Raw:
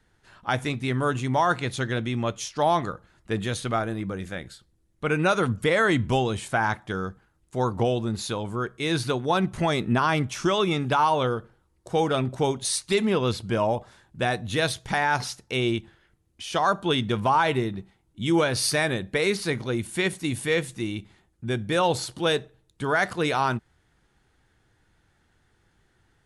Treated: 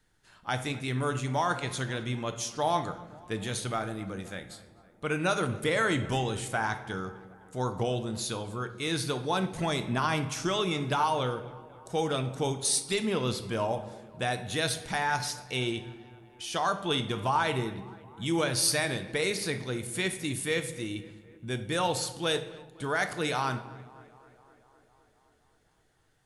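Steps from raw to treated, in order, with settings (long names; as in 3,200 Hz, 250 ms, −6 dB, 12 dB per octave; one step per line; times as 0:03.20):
high-shelf EQ 4,100 Hz +9 dB
on a send: tape delay 258 ms, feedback 76%, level −20.5 dB, low-pass 2,600 Hz
on the sum: rectangular room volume 340 cubic metres, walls mixed, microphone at 0.44 metres
level −7 dB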